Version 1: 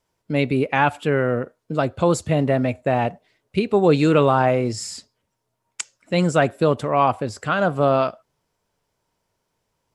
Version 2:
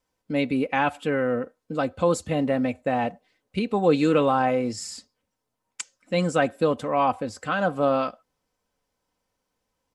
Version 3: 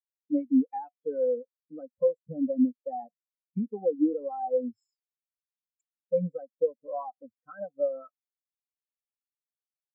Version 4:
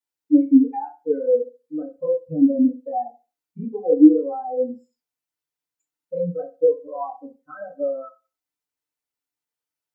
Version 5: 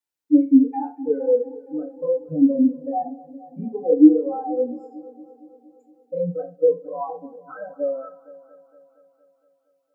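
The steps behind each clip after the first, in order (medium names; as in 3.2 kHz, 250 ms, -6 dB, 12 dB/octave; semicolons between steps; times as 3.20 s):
comb 3.9 ms, depth 52%; trim -5 dB
bass shelf 490 Hz -3 dB; compression 12:1, threshold -26 dBFS, peak gain reduction 11.5 dB; spectral contrast expander 4:1
FDN reverb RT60 0.3 s, low-frequency decay 0.85×, high-frequency decay 0.7×, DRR -7.5 dB; trim -1 dB
multi-head delay 232 ms, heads first and second, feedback 51%, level -22 dB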